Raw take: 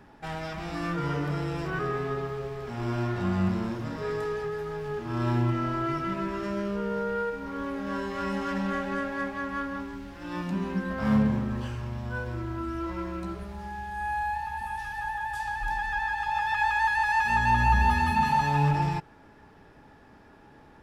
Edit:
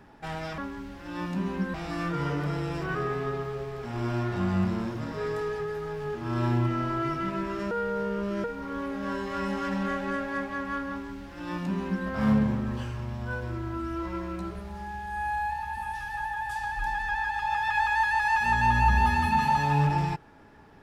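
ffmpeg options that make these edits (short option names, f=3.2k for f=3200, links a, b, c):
-filter_complex "[0:a]asplit=5[a][b][c][d][e];[a]atrim=end=0.582[f];[b]atrim=start=9.738:end=10.902[g];[c]atrim=start=0.578:end=6.552[h];[d]atrim=start=6.548:end=7.282,asetpts=PTS-STARTPTS,areverse[i];[e]atrim=start=7.278[j];[f][g]acrossfade=d=0.004:c1=hsin:c2=hsin[k];[k][h]acrossfade=d=0.004:c1=hsin:c2=hsin[l];[l][i]acrossfade=d=0.004:c1=hsin:c2=hsin[m];[m][j]acrossfade=d=0.004:c1=hsin:c2=hsin"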